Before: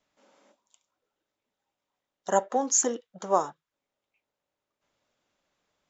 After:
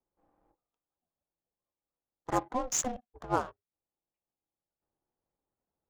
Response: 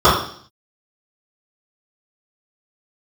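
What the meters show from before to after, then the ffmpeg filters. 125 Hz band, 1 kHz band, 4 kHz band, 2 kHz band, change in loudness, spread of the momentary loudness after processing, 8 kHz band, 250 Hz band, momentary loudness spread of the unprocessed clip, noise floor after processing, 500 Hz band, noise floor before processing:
+4.0 dB, -5.5 dB, -2.5 dB, -2.0 dB, -6.0 dB, 13 LU, no reading, -3.0 dB, 14 LU, under -85 dBFS, -9.0 dB, under -85 dBFS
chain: -af "adynamicsmooth=sensitivity=7.5:basefreq=690,aeval=exprs='val(0)*sin(2*PI*250*n/s)':c=same,volume=0.708"

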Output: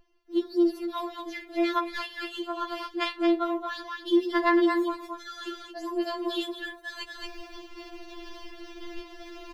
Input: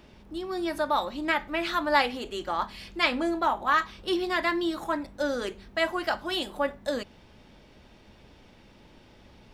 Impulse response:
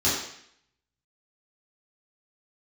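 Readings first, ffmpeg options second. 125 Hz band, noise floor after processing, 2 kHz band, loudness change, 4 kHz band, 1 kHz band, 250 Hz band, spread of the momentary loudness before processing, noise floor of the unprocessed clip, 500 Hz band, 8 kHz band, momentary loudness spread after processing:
under -15 dB, -49 dBFS, -5.0 dB, -1.0 dB, -3.5 dB, -4.0 dB, +5.0 dB, 9 LU, -55 dBFS, 0.0 dB, no reading, 20 LU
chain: -filter_complex "[0:a]aecho=1:1:226:0.355,acrossover=split=4500[s0][s1];[s0]asoftclip=type=tanh:threshold=0.112[s2];[s2][s1]amix=inputs=2:normalize=0,equalizer=f=8500:w=2.1:g=-8.5,dynaudnorm=f=190:g=3:m=3.98,agate=range=0.112:threshold=0.00891:ratio=16:detection=peak,areverse,acompressor=threshold=0.02:ratio=5,areverse,aeval=exprs='val(0)+0.00251*(sin(2*PI*50*n/s)+sin(2*PI*2*50*n/s)/2+sin(2*PI*3*50*n/s)/3+sin(2*PI*4*50*n/s)/4+sin(2*PI*5*50*n/s)/5)':c=same,afftfilt=real='re*4*eq(mod(b,16),0)':imag='im*4*eq(mod(b,16),0)':win_size=2048:overlap=0.75,volume=1.68"

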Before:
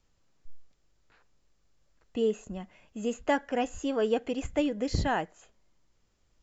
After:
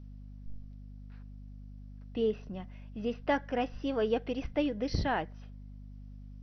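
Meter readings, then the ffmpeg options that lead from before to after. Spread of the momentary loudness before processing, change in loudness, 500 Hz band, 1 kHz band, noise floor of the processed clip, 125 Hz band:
13 LU, -3.0 dB, -2.5 dB, -2.5 dB, -47 dBFS, -0.5 dB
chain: -af "aeval=exprs='val(0)+0.00708*(sin(2*PI*50*n/s)+sin(2*PI*2*50*n/s)/2+sin(2*PI*3*50*n/s)/3+sin(2*PI*4*50*n/s)/4+sin(2*PI*5*50*n/s)/5)':c=same,volume=0.75" -ar 48000 -c:a mp2 -b:a 48k

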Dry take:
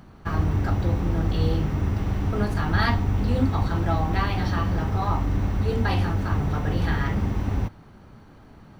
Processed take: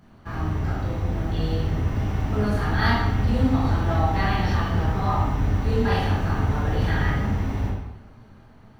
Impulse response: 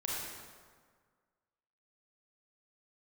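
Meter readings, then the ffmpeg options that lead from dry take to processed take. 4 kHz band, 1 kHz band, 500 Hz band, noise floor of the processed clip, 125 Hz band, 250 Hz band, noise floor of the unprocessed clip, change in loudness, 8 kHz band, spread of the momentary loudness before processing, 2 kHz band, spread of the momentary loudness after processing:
+1.5 dB, +2.0 dB, +1.5 dB, -49 dBFS, +0.5 dB, +0.5 dB, -48 dBFS, +1.0 dB, no reading, 3 LU, +2.0 dB, 6 LU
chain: -filter_complex "[0:a]dynaudnorm=f=360:g=9:m=1.58[s0];[1:a]atrim=start_sample=2205,asetrate=83790,aresample=44100[s1];[s0][s1]afir=irnorm=-1:irlink=0"

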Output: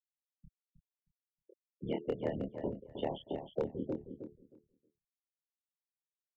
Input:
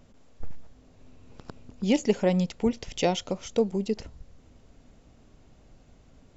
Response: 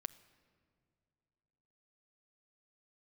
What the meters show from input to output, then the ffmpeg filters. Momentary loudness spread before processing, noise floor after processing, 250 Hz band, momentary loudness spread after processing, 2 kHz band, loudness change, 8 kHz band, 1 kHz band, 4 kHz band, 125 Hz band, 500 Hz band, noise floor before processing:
8 LU, under -85 dBFS, -13.5 dB, 11 LU, -16.0 dB, -12.0 dB, no reading, -11.5 dB, -17.0 dB, -12.5 dB, -10.5 dB, -57 dBFS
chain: -filter_complex "[0:a]highpass=52,bandreject=f=2500:w=12,afftfilt=real='hypot(re,im)*cos(2*PI*random(0))':imag='hypot(re,im)*sin(2*PI*random(1))':win_size=512:overlap=0.75,lowshelf=f=260:g=-4,bandreject=f=195.3:t=h:w=4,bandreject=f=390.6:t=h:w=4,bandreject=f=585.9:t=h:w=4,bandreject=f=781.2:t=h:w=4,bandreject=f=976.5:t=h:w=4,bandreject=f=1171.8:t=h:w=4,bandreject=f=1367.1:t=h:w=4,bandreject=f=1562.4:t=h:w=4,bandreject=f=1757.7:t=h:w=4,bandreject=f=1953:t=h:w=4,bandreject=f=2148.3:t=h:w=4,bandreject=f=2343.6:t=h:w=4,bandreject=f=2538.9:t=h:w=4,bandreject=f=2734.2:t=h:w=4,bandreject=f=2929.5:t=h:w=4,bandreject=f=3124.8:t=h:w=4,bandreject=f=3320.1:t=h:w=4,bandreject=f=3515.4:t=h:w=4,bandreject=f=3710.7:t=h:w=4,bandreject=f=3906:t=h:w=4,bandreject=f=4101.3:t=h:w=4,afftfilt=real='re*gte(hypot(re,im),0.0251)':imag='im*gte(hypot(re,im),0.0251)':win_size=1024:overlap=0.75,aeval=exprs='val(0)*sin(2*PI*38*n/s)':c=same,asplit=2[s0][s1];[s1]adelay=26,volume=0.794[s2];[s0][s2]amix=inputs=2:normalize=0,aresample=8000,aresample=44100,aresample=16000,aeval=exprs='clip(val(0),-1,0.0944)':c=same,aresample=44100,acrossover=split=86|290|1600[s3][s4][s5][s6];[s3]acompressor=threshold=0.00158:ratio=4[s7];[s4]acompressor=threshold=0.00631:ratio=4[s8];[s5]acompressor=threshold=0.0178:ratio=4[s9];[s6]acompressor=threshold=0.002:ratio=4[s10];[s7][s8][s9][s10]amix=inputs=4:normalize=0,asplit=2[s11][s12];[s12]aecho=0:1:314|628|942:0.376|0.0677|0.0122[s13];[s11][s13]amix=inputs=2:normalize=0,volume=1.19"

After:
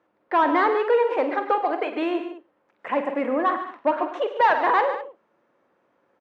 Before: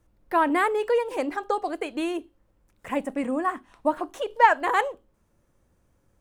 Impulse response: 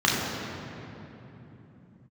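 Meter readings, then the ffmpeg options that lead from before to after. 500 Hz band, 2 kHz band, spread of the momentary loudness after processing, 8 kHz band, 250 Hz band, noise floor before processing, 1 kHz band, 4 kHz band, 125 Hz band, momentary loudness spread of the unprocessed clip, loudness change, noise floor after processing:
+4.0 dB, +1.0 dB, 9 LU, under -15 dB, +1.5 dB, -68 dBFS, +2.5 dB, +1.0 dB, no reading, 11 LU, +2.5 dB, -69 dBFS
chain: -filter_complex "[0:a]asplit=2[s0][s1];[s1]highpass=f=720:p=1,volume=11.2,asoftclip=type=tanh:threshold=0.631[s2];[s0][s2]amix=inputs=2:normalize=0,lowpass=f=1400:p=1,volume=0.501,highpass=240,lowpass=3400,aecho=1:1:48|103|143|203:0.282|0.2|0.266|0.158,volume=0.596"

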